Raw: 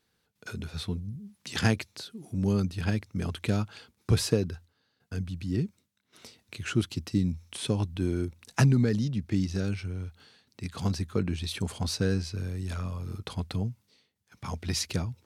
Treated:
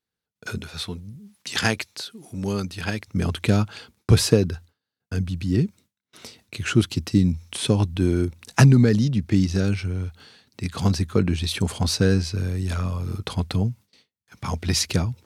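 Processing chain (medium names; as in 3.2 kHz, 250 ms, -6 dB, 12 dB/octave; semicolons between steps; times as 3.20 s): gate with hold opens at -53 dBFS; 0.58–3.08 s: bass shelf 380 Hz -11 dB; trim +8 dB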